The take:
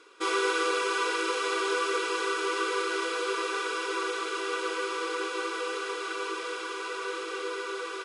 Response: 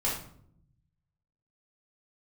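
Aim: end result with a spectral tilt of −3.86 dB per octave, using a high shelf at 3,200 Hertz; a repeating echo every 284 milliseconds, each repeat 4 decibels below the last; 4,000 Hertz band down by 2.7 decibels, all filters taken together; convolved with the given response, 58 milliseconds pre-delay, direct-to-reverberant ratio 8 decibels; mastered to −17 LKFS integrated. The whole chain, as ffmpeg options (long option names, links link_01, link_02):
-filter_complex "[0:a]highshelf=frequency=3200:gain=6,equalizer=frequency=4000:width_type=o:gain=-8,aecho=1:1:284|568|852|1136|1420|1704|1988|2272|2556:0.631|0.398|0.25|0.158|0.0994|0.0626|0.0394|0.0249|0.0157,asplit=2[link_01][link_02];[1:a]atrim=start_sample=2205,adelay=58[link_03];[link_02][link_03]afir=irnorm=-1:irlink=0,volume=-16dB[link_04];[link_01][link_04]amix=inputs=2:normalize=0,volume=10.5dB"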